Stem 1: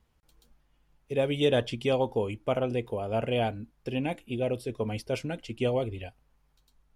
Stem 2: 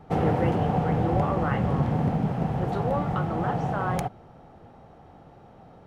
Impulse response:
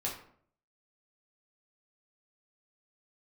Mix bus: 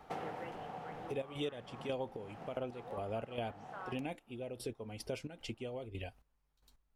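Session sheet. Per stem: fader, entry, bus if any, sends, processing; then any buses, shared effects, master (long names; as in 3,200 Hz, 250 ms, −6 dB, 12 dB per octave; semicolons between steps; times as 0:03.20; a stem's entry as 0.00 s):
+0.5 dB, 0.00 s, no send, parametric band 140 Hz −3 dB; gate pattern "x...x..xx.x...x" 111 BPM −12 dB
+1.5 dB, 0.00 s, no send, high-pass filter 1,100 Hz 6 dB per octave; automatic ducking −13 dB, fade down 0.55 s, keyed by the first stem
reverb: not used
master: downward compressor 3 to 1, threshold −40 dBFS, peak gain reduction 15.5 dB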